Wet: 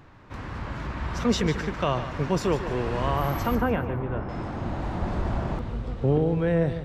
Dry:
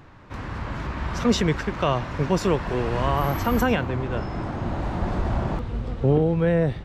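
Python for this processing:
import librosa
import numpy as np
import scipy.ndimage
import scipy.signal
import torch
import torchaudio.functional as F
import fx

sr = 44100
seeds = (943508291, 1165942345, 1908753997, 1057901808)

p1 = fx.lowpass(x, sr, hz=1800.0, slope=12, at=(3.55, 4.29))
p2 = p1 + fx.echo_feedback(p1, sr, ms=148, feedback_pct=33, wet_db=-11.5, dry=0)
y = F.gain(torch.from_numpy(p2), -3.0).numpy()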